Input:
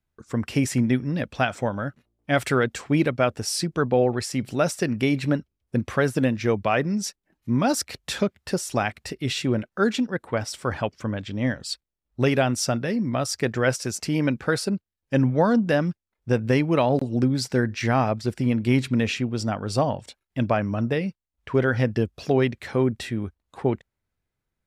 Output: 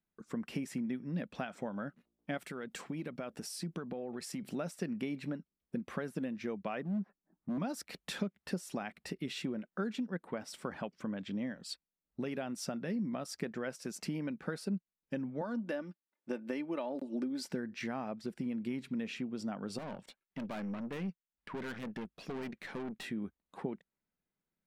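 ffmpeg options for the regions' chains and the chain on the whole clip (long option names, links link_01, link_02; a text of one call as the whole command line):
ffmpeg -i in.wav -filter_complex "[0:a]asettb=1/sr,asplit=3[link_01][link_02][link_03];[link_01]atrim=end=2.374[link_04];[link_02]atrim=start=2.37:end=4.49,asetpts=PTS-STARTPTS,afade=type=in:duration=0.004:curve=qsin,afade=type=out:start_time=2.116:duration=0.004:curve=qsin,highshelf=frequency=5100:gain=5,acompressor=threshold=-29dB:ratio=6:attack=3.2:release=140:knee=1:detection=peak[link_05];[link_03]atrim=start=4.486[link_06];[link_04][link_05]acrossfade=duration=0.004:curve1=hsin:curve2=qsin[link_07];[link_07][link_06]acrossfade=duration=0.004:curve1=qsin:curve2=hsin,asettb=1/sr,asplit=3[link_08][link_09][link_10];[link_08]atrim=end=6.824[link_11];[link_09]atrim=start=6.82:end=7.58,asetpts=PTS-STARTPTS,afade=type=in:duration=0.004:curve=qsin,afade=type=out:start_time=0.756:duration=0.004:curve=qsin,lowpass=frequency=1300:width=0.5412,lowpass=frequency=1300:width=1.3066,equalizer=frequency=490:width=5.1:gain=-7,asoftclip=type=hard:threshold=-24.5dB[link_12];[link_10]atrim=start=7.576[link_13];[link_11][link_12]acrossfade=duration=0.004:curve1=hsin:curve2=qsin[link_14];[link_14][link_13]acrossfade=duration=0.004:curve1=qsin:curve2=hsin,asettb=1/sr,asplit=3[link_15][link_16][link_17];[link_15]atrim=end=15.414[link_18];[link_16]atrim=start=15.41:end=17.49,asetpts=PTS-STARTPTS,afade=type=in:duration=0.004:curve=qsin,afade=type=out:start_time=2.076:duration=0.004:curve=qsin,highpass=290,aecho=1:1:3.4:0.5,atrim=end_sample=91728[link_19];[link_17]atrim=start=17.486[link_20];[link_18][link_19]acrossfade=duration=0.004:curve1=hsin:curve2=qsin[link_21];[link_21][link_20]acrossfade=duration=0.004:curve1=qsin:curve2=hsin,asettb=1/sr,asplit=3[link_22][link_23][link_24];[link_22]atrim=end=19.784[link_25];[link_23]atrim=start=19.78:end=23.04,asetpts=PTS-STARTPTS,afade=type=in:duration=0.004:curve=qsin,afade=type=out:start_time=3.256:duration=0.004:curve=qsin,equalizer=frequency=2000:width=0.58:gain=4,aeval=exprs='(tanh(25.1*val(0)+0.7)-tanh(0.7))/25.1':channel_layout=same[link_26];[link_24]atrim=start=23.036[link_27];[link_25][link_26]acrossfade=duration=0.004:curve1=hsin:curve2=qsin[link_28];[link_28][link_27]acrossfade=duration=0.004:curve1=qsin:curve2=hsin,equalizer=frequency=6400:width_type=o:width=1.4:gain=-5,acompressor=threshold=-29dB:ratio=5,lowshelf=frequency=140:width_type=q:width=3:gain=-8,volume=-7.5dB" out.wav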